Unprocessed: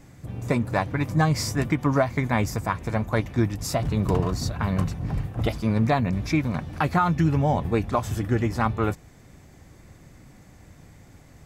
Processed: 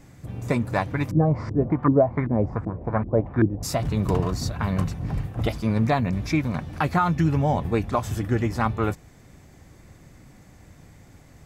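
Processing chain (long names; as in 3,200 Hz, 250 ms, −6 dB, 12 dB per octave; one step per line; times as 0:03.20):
0:01.11–0:03.63: auto-filter low-pass saw up 2.6 Hz 290–1,700 Hz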